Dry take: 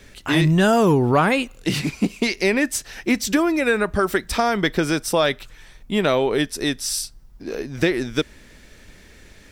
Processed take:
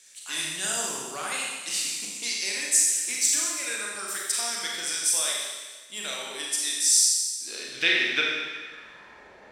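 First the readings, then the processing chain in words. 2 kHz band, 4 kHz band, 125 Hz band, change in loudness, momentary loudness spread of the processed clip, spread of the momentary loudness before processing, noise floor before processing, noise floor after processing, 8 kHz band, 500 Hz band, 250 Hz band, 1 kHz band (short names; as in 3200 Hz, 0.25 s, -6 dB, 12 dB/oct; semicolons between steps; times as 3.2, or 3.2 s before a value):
-4.5 dB, +1.0 dB, under -30 dB, -4.0 dB, 13 LU, 10 LU, -48 dBFS, -50 dBFS, +9.0 dB, -19.5 dB, -23.5 dB, -14.0 dB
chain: band-pass sweep 8000 Hz -> 800 Hz, 6.84–9.26; Schroeder reverb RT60 1.4 s, combs from 30 ms, DRR -3 dB; gain +7 dB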